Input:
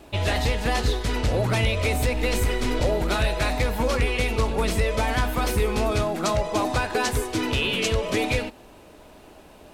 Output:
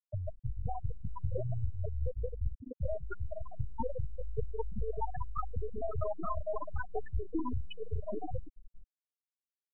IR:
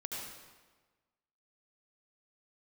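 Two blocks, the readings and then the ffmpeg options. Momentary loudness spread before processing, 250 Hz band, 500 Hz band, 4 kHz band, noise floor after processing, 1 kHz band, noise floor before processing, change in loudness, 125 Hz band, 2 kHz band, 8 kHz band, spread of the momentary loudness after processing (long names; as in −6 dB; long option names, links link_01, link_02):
2 LU, −17.0 dB, −14.5 dB, below −30 dB, below −85 dBFS, −14.5 dB, −48 dBFS, −15.5 dB, −12.0 dB, −26.5 dB, below −40 dB, 5 LU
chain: -af "lowpass=8300,equalizer=frequency=1300:width_type=o:width=1.4:gain=6.5,aeval=exprs='clip(val(0),-1,0.0251)':channel_layout=same,acompressor=threshold=-29dB:ratio=6,aecho=1:1:439|878|1317|1756:0.376|0.15|0.0601|0.0241,flanger=delay=5.9:depth=6.9:regen=-45:speed=0.21:shape=triangular,afftfilt=real='re*gte(hypot(re,im),0.0891)':imag='im*gte(hypot(re,im),0.0891)':win_size=1024:overlap=0.75,volume=6.5dB"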